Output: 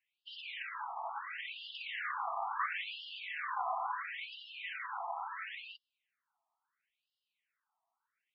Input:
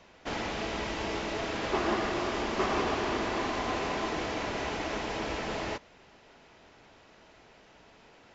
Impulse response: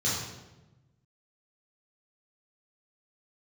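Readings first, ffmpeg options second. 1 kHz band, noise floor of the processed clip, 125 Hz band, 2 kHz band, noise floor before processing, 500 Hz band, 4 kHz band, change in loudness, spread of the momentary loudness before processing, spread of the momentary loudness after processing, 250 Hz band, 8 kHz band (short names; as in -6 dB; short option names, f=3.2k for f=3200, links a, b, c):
-5.0 dB, under -85 dBFS, under -40 dB, -5.0 dB, -58 dBFS, -20.0 dB, -7.5 dB, -7.5 dB, 5 LU, 8 LU, under -40 dB, n/a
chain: -af "bandreject=f=54.58:t=h:w=4,bandreject=f=109.16:t=h:w=4,bandreject=f=163.74:t=h:w=4,bandreject=f=218.32:t=h:w=4,bandreject=f=272.9:t=h:w=4,bandreject=f=327.48:t=h:w=4,bandreject=f=382.06:t=h:w=4,bandreject=f=436.64:t=h:w=4,bandreject=f=491.22:t=h:w=4,bandreject=f=545.8:t=h:w=4,bandreject=f=600.38:t=h:w=4,bandreject=f=654.96:t=h:w=4,bandreject=f=709.54:t=h:w=4,bandreject=f=764.12:t=h:w=4,bandreject=f=818.7:t=h:w=4,bandreject=f=873.28:t=h:w=4,bandreject=f=927.86:t=h:w=4,bandreject=f=982.44:t=h:w=4,bandreject=f=1.03702k:t=h:w=4,bandreject=f=1.0916k:t=h:w=4,bandreject=f=1.14618k:t=h:w=4,bandreject=f=1.20076k:t=h:w=4,bandreject=f=1.25534k:t=h:w=4,bandreject=f=1.30992k:t=h:w=4,bandreject=f=1.3645k:t=h:w=4,bandreject=f=1.41908k:t=h:w=4,bandreject=f=1.47366k:t=h:w=4,bandreject=f=1.52824k:t=h:w=4,bandreject=f=1.58282k:t=h:w=4,bandreject=f=1.6374k:t=h:w=4,bandreject=f=1.69198k:t=h:w=4,bandreject=f=1.74656k:t=h:w=4,bandreject=f=1.80114k:t=h:w=4,bandreject=f=1.85572k:t=h:w=4,bandreject=f=1.9103k:t=h:w=4,bandreject=f=1.96488k:t=h:w=4,afftdn=nr=25:nf=-40,afftfilt=real='re*between(b*sr/1024,910*pow(3900/910,0.5+0.5*sin(2*PI*0.73*pts/sr))/1.41,910*pow(3900/910,0.5+0.5*sin(2*PI*0.73*pts/sr))*1.41)':imag='im*between(b*sr/1024,910*pow(3900/910,0.5+0.5*sin(2*PI*0.73*pts/sr))/1.41,910*pow(3900/910,0.5+0.5*sin(2*PI*0.73*pts/sr))*1.41)':win_size=1024:overlap=0.75,volume=1.5dB"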